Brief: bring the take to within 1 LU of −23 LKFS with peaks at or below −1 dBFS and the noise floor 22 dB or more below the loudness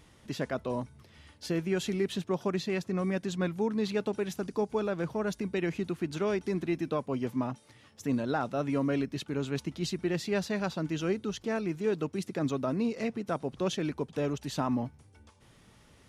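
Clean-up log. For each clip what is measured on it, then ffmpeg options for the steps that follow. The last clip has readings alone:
integrated loudness −32.5 LKFS; sample peak −18.0 dBFS; target loudness −23.0 LKFS
→ -af "volume=9.5dB"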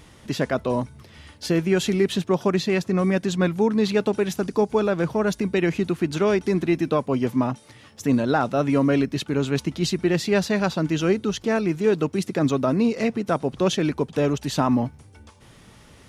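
integrated loudness −23.0 LKFS; sample peak −8.5 dBFS; background noise floor −50 dBFS

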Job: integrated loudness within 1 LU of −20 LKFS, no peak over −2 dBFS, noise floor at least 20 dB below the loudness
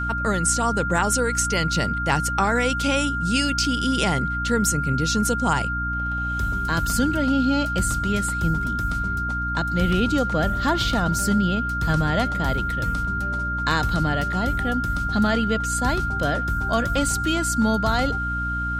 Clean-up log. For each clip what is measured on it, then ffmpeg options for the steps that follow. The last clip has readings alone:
mains hum 60 Hz; hum harmonics up to 300 Hz; level of the hum −26 dBFS; interfering tone 1,400 Hz; level of the tone −25 dBFS; integrated loudness −22.5 LKFS; sample peak −7.0 dBFS; target loudness −20.0 LKFS
→ -af "bandreject=frequency=60:width_type=h:width=6,bandreject=frequency=120:width_type=h:width=6,bandreject=frequency=180:width_type=h:width=6,bandreject=frequency=240:width_type=h:width=6,bandreject=frequency=300:width_type=h:width=6"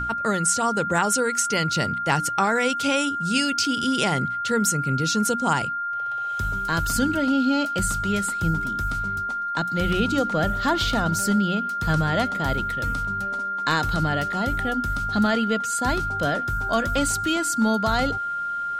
mains hum none found; interfering tone 1,400 Hz; level of the tone −25 dBFS
→ -af "bandreject=frequency=1400:width=30"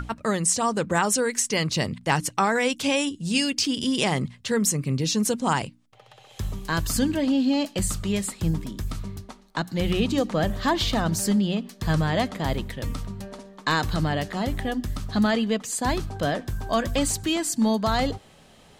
interfering tone none found; integrated loudness −25.0 LKFS; sample peak −7.5 dBFS; target loudness −20.0 LKFS
→ -af "volume=5dB"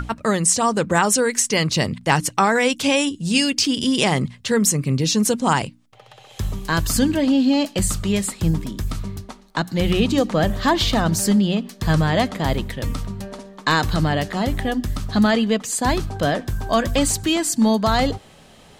integrated loudness −20.0 LKFS; sample peak −2.5 dBFS; background noise floor −48 dBFS

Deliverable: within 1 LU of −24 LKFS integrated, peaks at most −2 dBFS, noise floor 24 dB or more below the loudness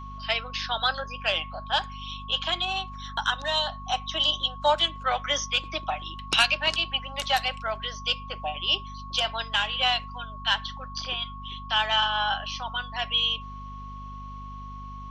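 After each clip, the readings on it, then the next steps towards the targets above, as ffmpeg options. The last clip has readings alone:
mains hum 50 Hz; hum harmonics up to 250 Hz; level of the hum −38 dBFS; interfering tone 1,100 Hz; level of the tone −40 dBFS; integrated loudness −26.5 LKFS; sample peak −9.0 dBFS; target loudness −24.0 LKFS
→ -af "bandreject=frequency=50:width_type=h:width=4,bandreject=frequency=100:width_type=h:width=4,bandreject=frequency=150:width_type=h:width=4,bandreject=frequency=200:width_type=h:width=4,bandreject=frequency=250:width_type=h:width=4"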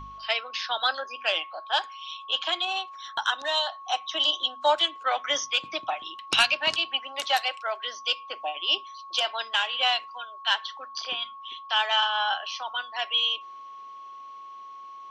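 mains hum none found; interfering tone 1,100 Hz; level of the tone −40 dBFS
→ -af "bandreject=frequency=1100:width=30"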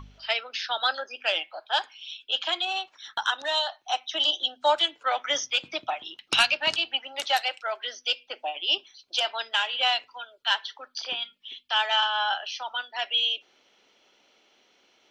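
interfering tone none found; integrated loudness −26.5 LKFS; sample peak −9.5 dBFS; target loudness −24.0 LKFS
→ -af "volume=2.5dB"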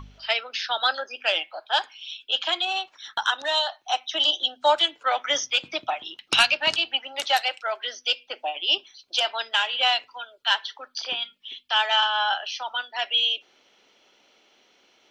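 integrated loudness −24.0 LKFS; sample peak −7.0 dBFS; background noise floor −62 dBFS

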